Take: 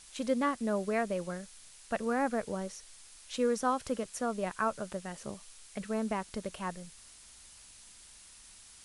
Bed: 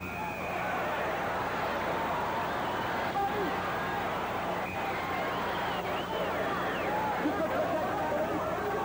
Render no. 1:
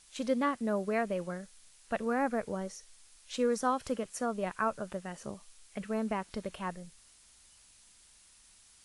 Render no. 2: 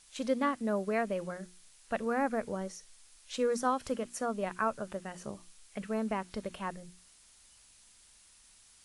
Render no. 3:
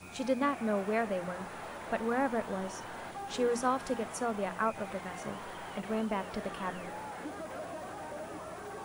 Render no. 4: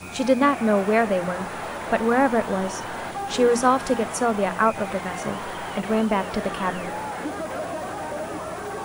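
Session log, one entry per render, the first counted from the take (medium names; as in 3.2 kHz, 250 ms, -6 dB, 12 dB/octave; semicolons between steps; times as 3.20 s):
noise print and reduce 6 dB
hum notches 60/120/180/240/300/360 Hz
add bed -11.5 dB
trim +11.5 dB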